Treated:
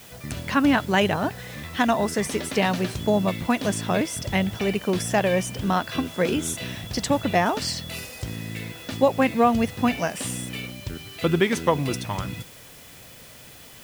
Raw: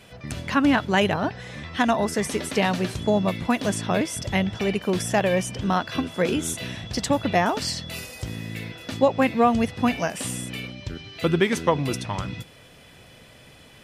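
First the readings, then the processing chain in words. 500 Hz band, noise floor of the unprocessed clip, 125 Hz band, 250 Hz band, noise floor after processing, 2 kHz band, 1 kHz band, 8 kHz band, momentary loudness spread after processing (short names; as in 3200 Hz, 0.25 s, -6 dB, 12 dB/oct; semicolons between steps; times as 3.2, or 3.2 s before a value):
0.0 dB, -50 dBFS, 0.0 dB, 0.0 dB, -46 dBFS, 0.0 dB, 0.0 dB, +0.5 dB, 15 LU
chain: requantised 8-bit, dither triangular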